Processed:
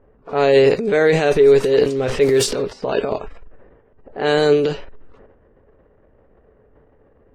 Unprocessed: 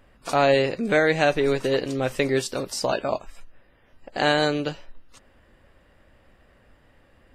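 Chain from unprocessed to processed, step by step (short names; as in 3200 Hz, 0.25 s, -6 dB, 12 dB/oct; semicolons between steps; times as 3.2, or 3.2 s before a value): 1.96–2.62 zero-crossing step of -33 dBFS; transient shaper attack -5 dB, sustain +10 dB; bell 430 Hz +14 dB 0.25 oct; low-pass opened by the level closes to 1000 Hz, open at -12.5 dBFS; gain +1 dB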